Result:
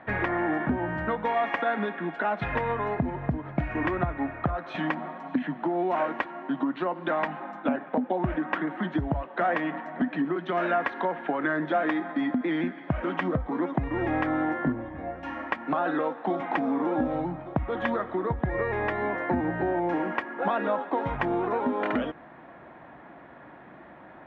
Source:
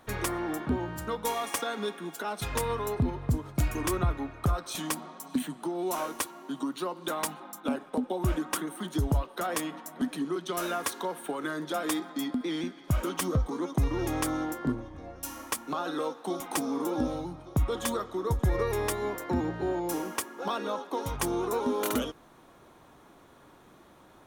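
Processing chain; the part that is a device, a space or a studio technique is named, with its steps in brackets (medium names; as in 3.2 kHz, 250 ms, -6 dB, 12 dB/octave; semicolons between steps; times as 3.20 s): bass amplifier (compression 5:1, threshold -30 dBFS, peak gain reduction 8.5 dB; cabinet simulation 76–2400 Hz, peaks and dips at 99 Hz -9 dB, 420 Hz -6 dB, 680 Hz +5 dB, 1.2 kHz -4 dB, 1.8 kHz +7 dB); trim +8 dB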